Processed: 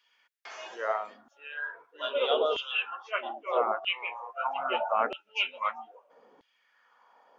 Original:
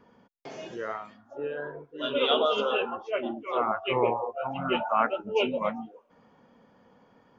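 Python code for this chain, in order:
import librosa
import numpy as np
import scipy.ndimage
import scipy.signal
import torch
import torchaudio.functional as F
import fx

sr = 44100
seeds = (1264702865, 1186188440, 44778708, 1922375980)

y = fx.filter_lfo_highpass(x, sr, shape='saw_down', hz=0.78, low_hz=330.0, high_hz=3200.0, q=2.2)
y = fx.rider(y, sr, range_db=4, speed_s=0.5)
y = y * 10.0 ** (-2.5 / 20.0)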